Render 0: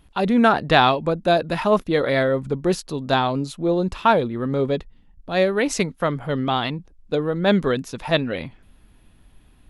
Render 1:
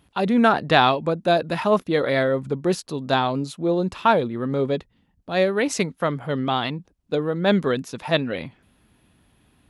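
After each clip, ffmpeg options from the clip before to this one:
-af "highpass=91,volume=-1dB"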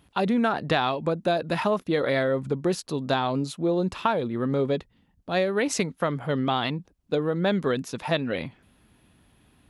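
-af "acompressor=threshold=-20dB:ratio=6"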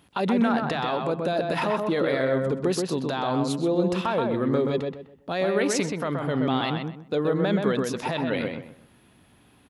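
-filter_complex "[0:a]highpass=f=150:p=1,alimiter=limit=-19.5dB:level=0:latency=1:release=35,asplit=2[a][b];[b]adelay=127,lowpass=f=2.2k:p=1,volume=-3dB,asplit=2[c][d];[d]adelay=127,lowpass=f=2.2k:p=1,volume=0.29,asplit=2[e][f];[f]adelay=127,lowpass=f=2.2k:p=1,volume=0.29,asplit=2[g][h];[h]adelay=127,lowpass=f=2.2k:p=1,volume=0.29[i];[c][e][g][i]amix=inputs=4:normalize=0[j];[a][j]amix=inputs=2:normalize=0,volume=3dB"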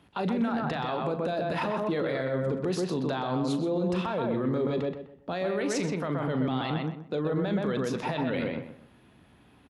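-filter_complex "[0:a]aemphasis=mode=reproduction:type=50kf,acrossover=split=130|4400[a][b][c];[b]alimiter=limit=-22.5dB:level=0:latency=1:release=12[d];[a][d][c]amix=inputs=3:normalize=0,asplit=2[e][f];[f]adelay=39,volume=-12dB[g];[e][g]amix=inputs=2:normalize=0"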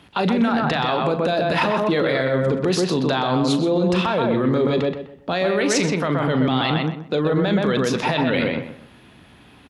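-af "equalizer=f=3.7k:t=o:w=2.5:g=5.5,volume=8.5dB"

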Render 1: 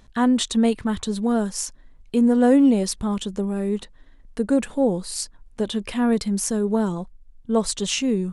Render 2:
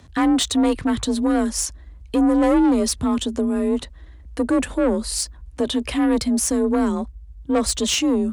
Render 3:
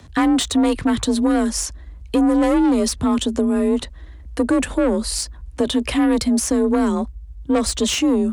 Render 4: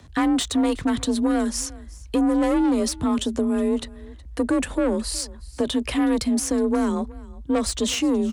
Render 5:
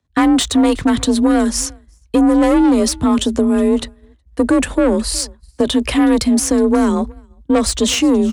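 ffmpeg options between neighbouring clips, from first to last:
-af "asoftclip=type=tanh:threshold=-19dB,afreqshift=37,volume=5.5dB"
-filter_complex "[0:a]acrossover=split=210|2300|7000[a][b][c][d];[a]acompressor=threshold=-29dB:ratio=4[e];[b]acompressor=threshold=-19dB:ratio=4[f];[c]acompressor=threshold=-30dB:ratio=4[g];[d]acompressor=threshold=-32dB:ratio=4[h];[e][f][g][h]amix=inputs=4:normalize=0,volume=4dB"
-af "aecho=1:1:368:0.0841,volume=-4dB"
-af "agate=range=-33dB:threshold=-28dB:ratio=3:detection=peak,volume=8dB"

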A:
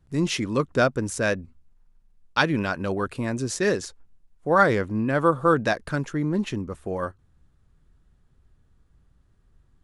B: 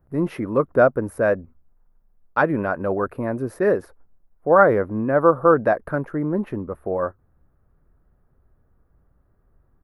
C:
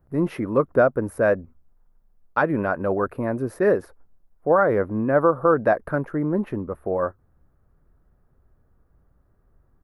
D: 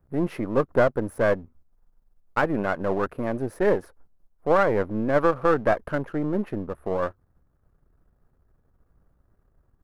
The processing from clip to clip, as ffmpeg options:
-af "firequalizer=gain_entry='entry(150,0);entry(590,9);entry(910,4);entry(1300,4);entry(3200,-18);entry(4700,-20);entry(7200,-27);entry(12000,6)':delay=0.05:min_phase=1,volume=-1dB"
-af "alimiter=limit=-7.5dB:level=0:latency=1:release=189"
-af "aeval=exprs='if(lt(val(0),0),0.447*val(0),val(0))':c=same"

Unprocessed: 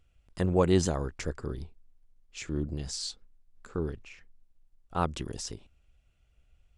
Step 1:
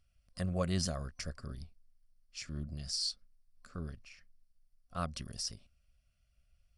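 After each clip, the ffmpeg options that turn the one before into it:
-af "superequalizer=6b=0.282:7b=0.282:9b=0.282:14b=2.82:16b=2.51,volume=-6.5dB"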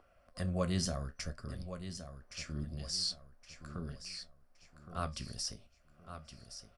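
-filter_complex "[0:a]acrossover=split=320|1400|4400[a][b][c][d];[b]acompressor=mode=upward:threshold=-48dB:ratio=2.5[e];[a][e][c][d]amix=inputs=4:normalize=0,flanger=delay=8.9:depth=8.6:regen=-60:speed=0.66:shape=triangular,aecho=1:1:1118|2236|3354:0.299|0.0955|0.0306,volume=4dB"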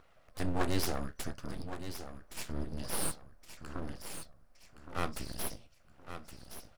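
-af "aeval=exprs='abs(val(0))':c=same,volume=4.5dB"

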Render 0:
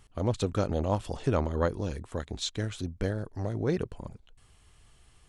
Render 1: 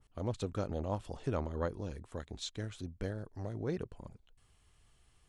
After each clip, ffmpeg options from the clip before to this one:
-af "adynamicequalizer=threshold=0.00562:dfrequency=1800:dqfactor=0.7:tfrequency=1800:tqfactor=0.7:attack=5:release=100:ratio=0.375:range=1.5:mode=cutabove:tftype=highshelf,volume=-8dB"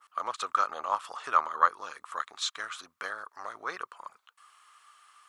-af "highpass=f=1.2k:t=q:w=7.1,volume=9dB"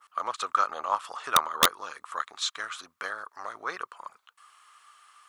-af "aeval=exprs='(mod(3.98*val(0)+1,2)-1)/3.98':c=same,volume=2dB"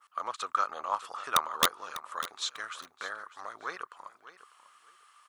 -af "aecho=1:1:598|1196:0.178|0.0356,volume=-4dB"

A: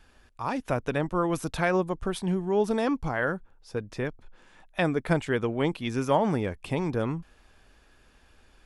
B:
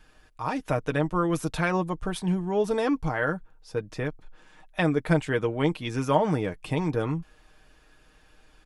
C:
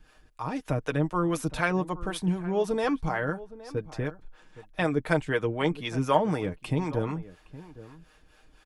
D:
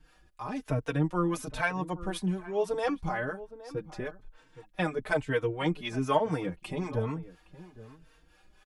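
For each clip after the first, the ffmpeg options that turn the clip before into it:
-af "aecho=1:1:6.5:0.5"
-filter_complex "[0:a]acrossover=split=420[a][b];[a]aeval=exprs='val(0)*(1-0.7/2+0.7/2*cos(2*PI*4*n/s))':c=same[c];[b]aeval=exprs='val(0)*(1-0.7/2-0.7/2*cos(2*PI*4*n/s))':c=same[d];[c][d]amix=inputs=2:normalize=0,asplit=2[e][f];[f]adelay=816.3,volume=-17dB,highshelf=f=4k:g=-18.4[g];[e][g]amix=inputs=2:normalize=0,volume=2dB"
-filter_complex "[0:a]asplit=2[a][b];[b]adelay=3.9,afreqshift=1.1[c];[a][c]amix=inputs=2:normalize=1"

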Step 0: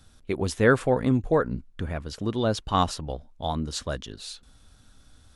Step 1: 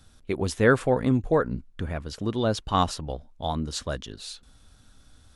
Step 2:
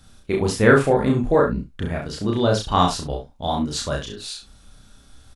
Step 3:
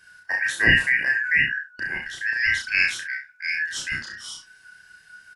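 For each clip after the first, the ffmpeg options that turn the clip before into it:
-af anull
-filter_complex "[0:a]asplit=2[a][b];[b]adelay=29,volume=-5.5dB[c];[a][c]amix=inputs=2:normalize=0,asplit=2[d][e];[e]aecho=0:1:34|70:0.708|0.316[f];[d][f]amix=inputs=2:normalize=0,volume=3dB"
-af "afftfilt=real='real(if(lt(b,272),68*(eq(floor(b/68),0)*1+eq(floor(b/68),1)*0+eq(floor(b/68),2)*3+eq(floor(b/68),3)*2)+mod(b,68),b),0)':imag='imag(if(lt(b,272),68*(eq(floor(b/68),0)*1+eq(floor(b/68),1)*0+eq(floor(b/68),2)*3+eq(floor(b/68),3)*2)+mod(b,68),b),0)':win_size=2048:overlap=0.75,volume=-3.5dB"

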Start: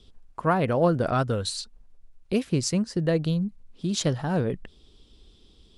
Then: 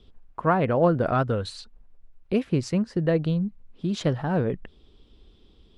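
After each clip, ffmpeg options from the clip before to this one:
-af "bass=f=250:g=-1,treble=f=4k:g=-15,volume=1.5dB"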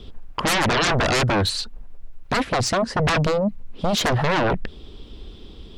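-af "aeval=exprs='0.376*sin(PI/2*8.91*val(0)/0.376)':c=same,volume=-8dB"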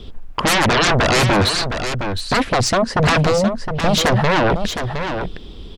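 -af "aecho=1:1:713:0.398,volume=4.5dB"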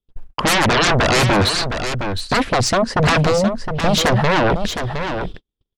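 -af "agate=range=-51dB:threshold=-26dB:ratio=16:detection=peak"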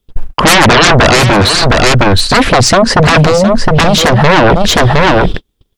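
-af "alimiter=level_in=20.5dB:limit=-1dB:release=50:level=0:latency=1,volume=-1dB"

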